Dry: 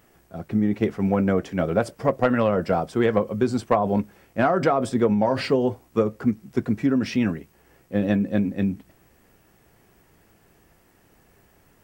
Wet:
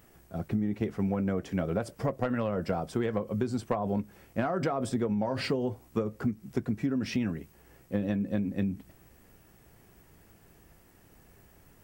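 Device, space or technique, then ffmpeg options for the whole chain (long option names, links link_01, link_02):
ASMR close-microphone chain: -af "lowshelf=frequency=200:gain=6,acompressor=threshold=-23dB:ratio=6,highshelf=frequency=6400:gain=4.5,volume=-3dB"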